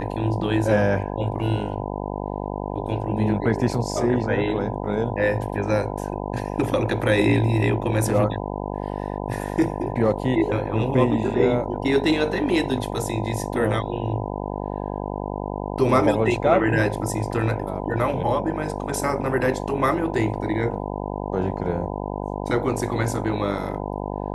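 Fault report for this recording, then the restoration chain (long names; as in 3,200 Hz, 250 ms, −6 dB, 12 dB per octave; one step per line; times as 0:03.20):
mains buzz 50 Hz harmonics 20 −29 dBFS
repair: hum removal 50 Hz, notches 20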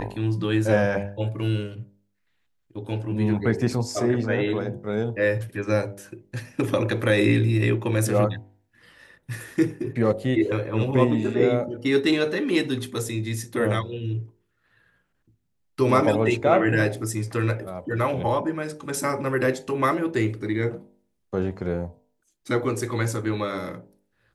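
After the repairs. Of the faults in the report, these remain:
none of them is left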